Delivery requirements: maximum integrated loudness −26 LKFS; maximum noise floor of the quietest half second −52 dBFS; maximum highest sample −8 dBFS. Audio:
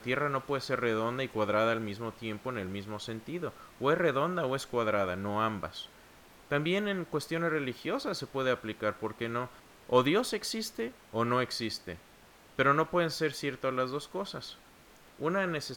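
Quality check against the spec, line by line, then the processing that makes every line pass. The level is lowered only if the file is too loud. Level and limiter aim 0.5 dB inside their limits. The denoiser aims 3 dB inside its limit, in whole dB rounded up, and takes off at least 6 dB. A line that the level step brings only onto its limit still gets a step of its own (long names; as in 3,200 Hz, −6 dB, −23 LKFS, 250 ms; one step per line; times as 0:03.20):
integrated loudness −32.0 LKFS: in spec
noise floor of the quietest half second −57 dBFS: in spec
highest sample −12.5 dBFS: in spec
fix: no processing needed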